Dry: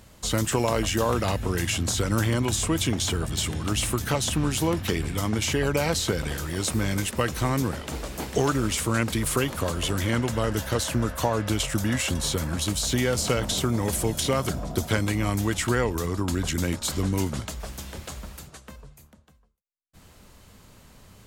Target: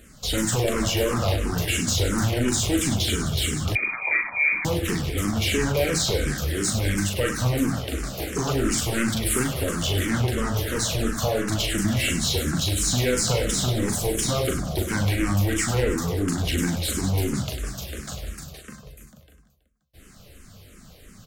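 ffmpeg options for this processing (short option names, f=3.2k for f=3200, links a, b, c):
-filter_complex "[0:a]equalizer=f=940:w=4.3:g=-14.5,volume=22dB,asoftclip=hard,volume=-22dB,aecho=1:1:40|100|190|325|527.5:0.631|0.398|0.251|0.158|0.1,asettb=1/sr,asplit=3[a][b][c];[a]atrim=end=3.754[d];[b]atrim=start=3.75:end=4.65,asetpts=PTS-STARTPTS,afade=t=in:d=0.004:c=qsin,afade=t=out:st=0.896:d=0.004:c=qsin,lowpass=f=2.1k:t=q:w=0.5098,lowpass=f=2.1k:t=q:w=0.6013,lowpass=f=2.1k:t=q:w=0.9,lowpass=f=2.1k:t=q:w=2.563,afreqshift=-2500[e];[c]atrim=start=4.646[f];[d][e]acrossfade=d=0.004:c1=hsin:c2=qsin[g];[g][f]acrossfade=d=0.004:c1=qsin:c2=hsin,asplit=2[h][i];[i]afreqshift=-2.9[j];[h][j]amix=inputs=2:normalize=1,volume=4.5dB"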